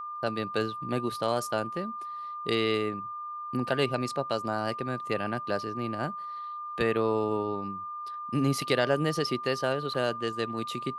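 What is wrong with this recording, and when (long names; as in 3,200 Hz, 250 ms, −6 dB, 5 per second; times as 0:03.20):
whistle 1,200 Hz −35 dBFS
0:09.94–0:09.95: drop-out 6.2 ms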